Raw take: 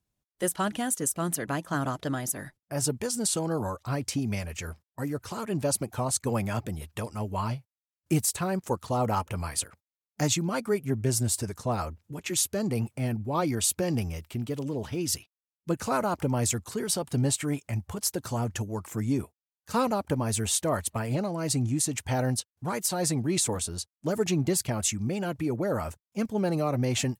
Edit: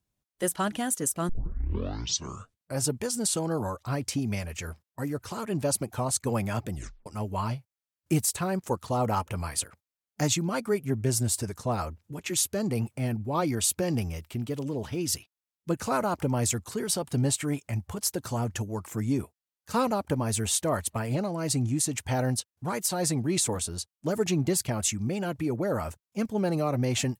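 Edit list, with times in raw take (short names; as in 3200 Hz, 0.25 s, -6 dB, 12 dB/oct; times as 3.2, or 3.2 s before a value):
1.29 tape start 1.56 s
6.74 tape stop 0.32 s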